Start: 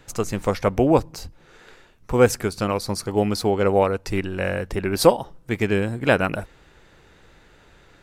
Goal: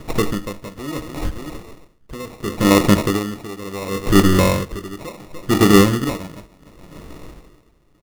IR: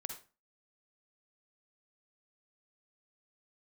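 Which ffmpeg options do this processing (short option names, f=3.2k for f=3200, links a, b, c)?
-filter_complex "[0:a]equalizer=f=100:t=o:w=0.33:g=-7,equalizer=f=315:t=o:w=0.33:g=6,equalizer=f=800:t=o:w=0.33:g=-6,acompressor=threshold=-22dB:ratio=3,lowshelf=f=380:g=7,aecho=1:1:293|586|879:0.112|0.0494|0.0217,asplit=2[a][b];[1:a]atrim=start_sample=2205[c];[b][c]afir=irnorm=-1:irlink=0,volume=-4dB[d];[a][d]amix=inputs=2:normalize=0,apsyclip=12dB,bandreject=f=318.3:t=h:w=4,bandreject=f=636.6:t=h:w=4,bandreject=f=954.9:t=h:w=4,bandreject=f=1.2732k:t=h:w=4,bandreject=f=1.5915k:t=h:w=4,bandreject=f=1.9098k:t=h:w=4,bandreject=f=2.2281k:t=h:w=4,bandreject=f=2.5464k:t=h:w=4,asplit=2[e][f];[f]aecho=0:1:20|43|57:0.398|0.15|0.133[g];[e][g]amix=inputs=2:normalize=0,acrusher=samples=28:mix=1:aa=0.000001,aeval=exprs='val(0)*pow(10,-22*(0.5-0.5*cos(2*PI*0.7*n/s))/20)':c=same,volume=-4.5dB"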